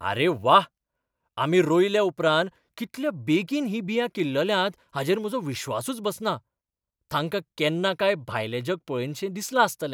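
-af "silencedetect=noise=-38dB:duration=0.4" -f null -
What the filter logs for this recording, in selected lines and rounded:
silence_start: 0.65
silence_end: 1.37 | silence_duration: 0.73
silence_start: 6.38
silence_end: 7.11 | silence_duration: 0.73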